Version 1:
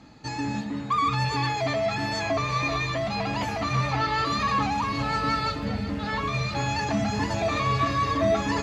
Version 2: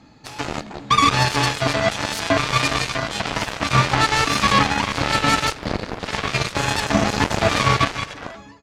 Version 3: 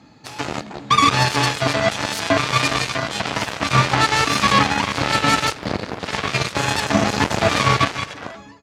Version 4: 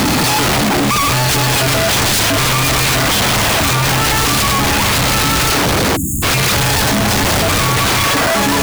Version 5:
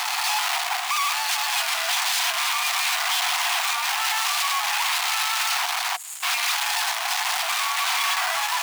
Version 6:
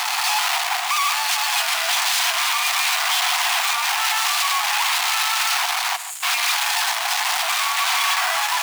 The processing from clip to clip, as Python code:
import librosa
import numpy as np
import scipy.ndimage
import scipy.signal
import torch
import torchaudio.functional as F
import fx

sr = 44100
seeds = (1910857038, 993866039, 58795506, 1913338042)

y1 = fx.fade_out_tail(x, sr, length_s=1.01)
y1 = fx.cheby_harmonics(y1, sr, harmonics=(7,), levels_db=(-14,), full_scale_db=-12.5)
y1 = y1 * librosa.db_to_amplitude(9.0)
y2 = scipy.signal.sosfilt(scipy.signal.butter(2, 77.0, 'highpass', fs=sr, output='sos'), y1)
y2 = y2 * librosa.db_to_amplitude(1.0)
y3 = np.sign(y2) * np.sqrt(np.mean(np.square(y2)))
y3 = fx.spec_erase(y3, sr, start_s=5.96, length_s=0.27, low_hz=360.0, high_hz=6500.0)
y3 = y3 * librosa.db_to_amplitude(6.5)
y4 = scipy.signal.medfilt(y3, 3)
y4 = scipy.signal.sosfilt(scipy.signal.cheby1(6, 3, 700.0, 'highpass', fs=sr, output='sos'), y4)
y4 = y4 * librosa.db_to_amplitude(-7.0)
y5 = y4 + 10.0 ** (-12.0 / 20.0) * np.pad(y4, (int(143 * sr / 1000.0), 0))[:len(y4)]
y5 = y5 * librosa.db_to_amplitude(3.0)